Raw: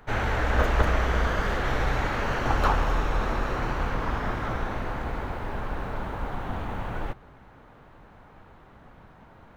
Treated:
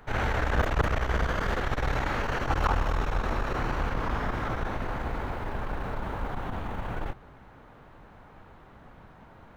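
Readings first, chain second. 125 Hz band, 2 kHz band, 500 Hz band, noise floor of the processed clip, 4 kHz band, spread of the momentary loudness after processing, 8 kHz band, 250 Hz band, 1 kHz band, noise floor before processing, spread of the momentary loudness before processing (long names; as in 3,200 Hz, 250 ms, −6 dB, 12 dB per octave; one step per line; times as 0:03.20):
−1.5 dB, −2.5 dB, −2.5 dB, −52 dBFS, −2.5 dB, 8 LU, can't be measured, −2.0 dB, −2.5 dB, −52 dBFS, 10 LU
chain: saturating transformer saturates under 170 Hz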